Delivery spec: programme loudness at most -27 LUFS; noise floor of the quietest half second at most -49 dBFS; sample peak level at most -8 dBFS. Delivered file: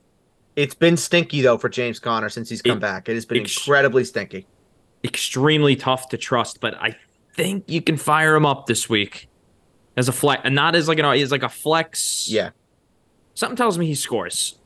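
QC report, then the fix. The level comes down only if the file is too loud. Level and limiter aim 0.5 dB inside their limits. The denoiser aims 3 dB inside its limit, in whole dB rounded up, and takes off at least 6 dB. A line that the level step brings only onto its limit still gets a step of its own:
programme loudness -20.0 LUFS: fail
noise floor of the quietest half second -62 dBFS: pass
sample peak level -5.0 dBFS: fail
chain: trim -7.5 dB

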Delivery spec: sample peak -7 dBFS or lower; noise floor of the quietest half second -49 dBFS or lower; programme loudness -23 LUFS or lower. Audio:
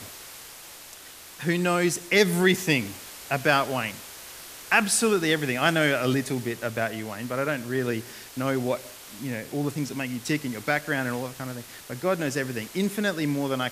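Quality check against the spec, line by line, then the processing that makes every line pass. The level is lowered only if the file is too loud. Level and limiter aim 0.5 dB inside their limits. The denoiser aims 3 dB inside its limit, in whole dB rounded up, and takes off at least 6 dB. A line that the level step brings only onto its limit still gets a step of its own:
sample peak -5.5 dBFS: fail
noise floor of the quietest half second -45 dBFS: fail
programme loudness -26.0 LUFS: pass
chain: noise reduction 7 dB, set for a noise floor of -45 dBFS; peak limiter -7.5 dBFS

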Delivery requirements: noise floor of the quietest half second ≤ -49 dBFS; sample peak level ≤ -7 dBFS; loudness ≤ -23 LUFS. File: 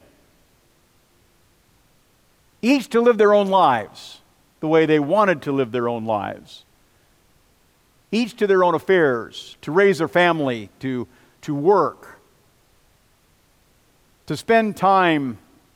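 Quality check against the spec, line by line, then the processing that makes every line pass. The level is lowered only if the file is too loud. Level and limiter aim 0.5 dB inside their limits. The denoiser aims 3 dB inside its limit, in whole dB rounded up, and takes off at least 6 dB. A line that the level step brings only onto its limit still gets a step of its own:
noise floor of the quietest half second -59 dBFS: pass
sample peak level -5.5 dBFS: fail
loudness -19.0 LUFS: fail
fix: trim -4.5 dB

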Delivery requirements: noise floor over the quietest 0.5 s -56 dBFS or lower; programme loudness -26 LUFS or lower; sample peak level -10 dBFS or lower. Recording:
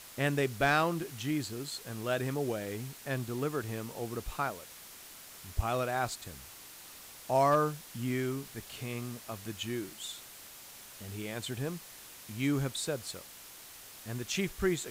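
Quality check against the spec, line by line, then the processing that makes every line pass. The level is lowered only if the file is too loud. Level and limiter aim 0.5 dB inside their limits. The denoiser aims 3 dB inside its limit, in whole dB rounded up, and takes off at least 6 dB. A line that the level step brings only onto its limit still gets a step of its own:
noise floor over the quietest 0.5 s -51 dBFS: fail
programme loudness -34.0 LUFS: pass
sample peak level -17.0 dBFS: pass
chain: noise reduction 8 dB, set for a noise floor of -51 dBFS

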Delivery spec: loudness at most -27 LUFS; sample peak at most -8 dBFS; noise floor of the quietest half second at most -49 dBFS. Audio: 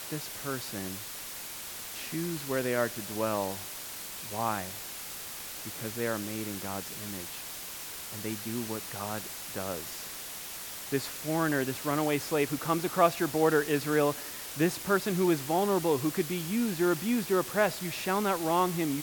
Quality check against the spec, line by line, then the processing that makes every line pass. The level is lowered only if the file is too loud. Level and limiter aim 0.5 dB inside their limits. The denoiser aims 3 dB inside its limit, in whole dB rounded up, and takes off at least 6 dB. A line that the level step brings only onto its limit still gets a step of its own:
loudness -31.0 LUFS: pass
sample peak -10.0 dBFS: pass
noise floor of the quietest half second -41 dBFS: fail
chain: noise reduction 11 dB, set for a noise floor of -41 dBFS

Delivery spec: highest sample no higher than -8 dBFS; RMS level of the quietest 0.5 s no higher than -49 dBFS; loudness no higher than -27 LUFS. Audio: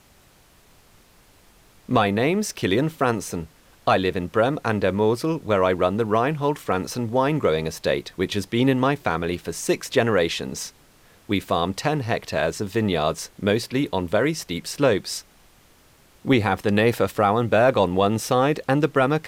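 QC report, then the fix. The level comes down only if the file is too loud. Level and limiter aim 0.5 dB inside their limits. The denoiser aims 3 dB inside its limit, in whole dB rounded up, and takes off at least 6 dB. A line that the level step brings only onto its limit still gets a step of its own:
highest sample -6.0 dBFS: fail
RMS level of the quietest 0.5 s -55 dBFS: pass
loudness -22.5 LUFS: fail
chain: trim -5 dB

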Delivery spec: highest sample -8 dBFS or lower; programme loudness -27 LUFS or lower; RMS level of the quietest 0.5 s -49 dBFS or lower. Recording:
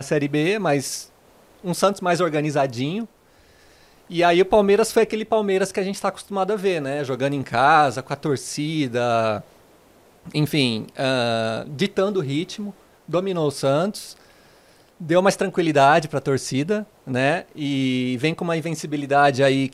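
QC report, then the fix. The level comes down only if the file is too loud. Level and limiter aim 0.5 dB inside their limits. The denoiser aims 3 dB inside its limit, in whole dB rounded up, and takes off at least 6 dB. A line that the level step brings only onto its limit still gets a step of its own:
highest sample -4.0 dBFS: fail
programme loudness -21.5 LUFS: fail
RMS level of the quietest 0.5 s -54 dBFS: pass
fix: trim -6 dB

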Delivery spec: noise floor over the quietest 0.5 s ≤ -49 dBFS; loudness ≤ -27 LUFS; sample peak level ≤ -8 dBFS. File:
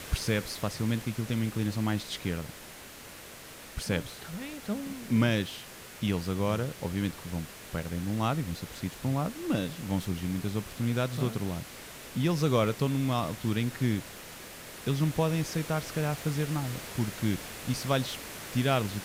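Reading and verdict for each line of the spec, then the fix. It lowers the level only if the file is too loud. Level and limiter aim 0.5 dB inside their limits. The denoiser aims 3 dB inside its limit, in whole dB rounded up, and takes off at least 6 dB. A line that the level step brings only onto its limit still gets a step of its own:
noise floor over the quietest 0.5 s -47 dBFS: fail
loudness -31.5 LUFS: pass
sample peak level -13.0 dBFS: pass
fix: noise reduction 6 dB, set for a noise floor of -47 dBFS

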